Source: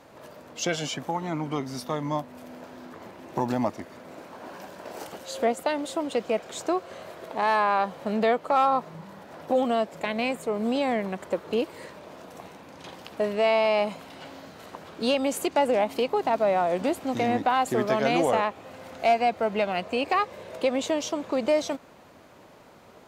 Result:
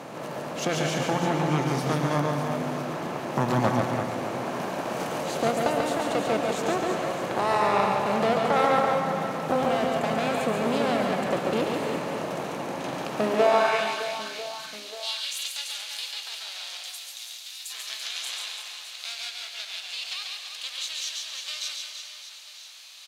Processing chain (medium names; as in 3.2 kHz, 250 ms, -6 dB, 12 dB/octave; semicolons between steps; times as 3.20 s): spectral levelling over time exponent 0.6; Chebyshev shaper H 4 -13 dB, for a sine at -5.5 dBFS; on a send at -5 dB: reverberation RT60 1.5 s, pre-delay 96 ms; on the sum: high-pass sweep 140 Hz -> 3.9 kHz, 13.15–13.90 s; 16.83–17.70 s: differentiator; reverse bouncing-ball echo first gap 140 ms, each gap 1.4×, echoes 5; trim -6 dB